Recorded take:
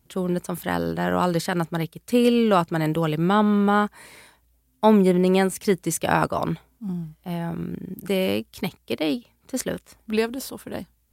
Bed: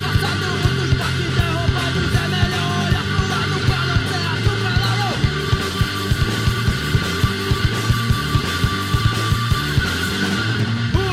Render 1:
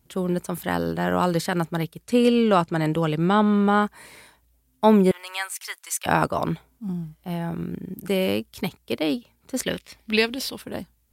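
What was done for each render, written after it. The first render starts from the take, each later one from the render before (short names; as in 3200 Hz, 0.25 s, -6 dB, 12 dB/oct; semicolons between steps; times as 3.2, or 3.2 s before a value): 2.04–3.82 LPF 10000 Hz; 5.11–6.06 HPF 1000 Hz 24 dB/oct; 9.63–10.62 band shelf 3200 Hz +10 dB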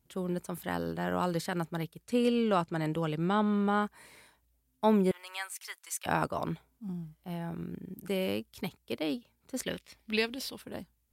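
gain -9 dB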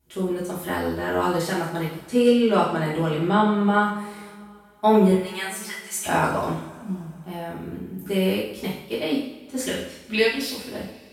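two-slope reverb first 0.63 s, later 3.1 s, from -21 dB, DRR -8.5 dB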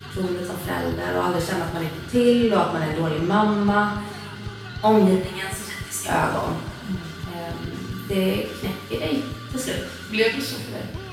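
add bed -16.5 dB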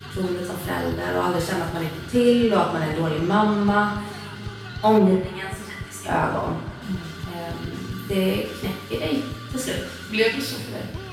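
4.98–6.82 high shelf 3400 Hz -10.5 dB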